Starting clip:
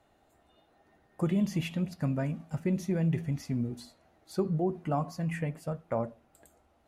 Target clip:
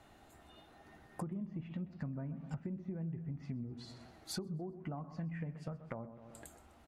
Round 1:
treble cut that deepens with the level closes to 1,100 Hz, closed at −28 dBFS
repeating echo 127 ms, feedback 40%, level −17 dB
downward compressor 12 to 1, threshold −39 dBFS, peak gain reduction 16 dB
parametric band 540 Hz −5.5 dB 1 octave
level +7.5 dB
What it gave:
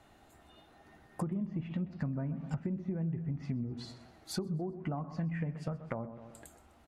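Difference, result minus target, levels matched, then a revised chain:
downward compressor: peak gain reduction −6 dB
treble cut that deepens with the level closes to 1,100 Hz, closed at −28 dBFS
repeating echo 127 ms, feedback 40%, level −17 dB
downward compressor 12 to 1, threshold −45.5 dBFS, peak gain reduction 22 dB
parametric band 540 Hz −5.5 dB 1 octave
level +7.5 dB

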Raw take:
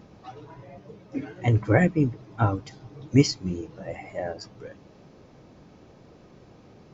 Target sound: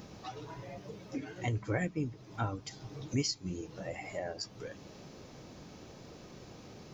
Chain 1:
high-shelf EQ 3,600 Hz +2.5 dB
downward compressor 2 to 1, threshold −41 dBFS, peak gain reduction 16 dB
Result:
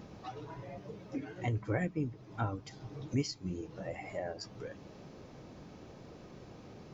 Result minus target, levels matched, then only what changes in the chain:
8,000 Hz band −7.0 dB
change: high-shelf EQ 3,600 Hz +13.5 dB

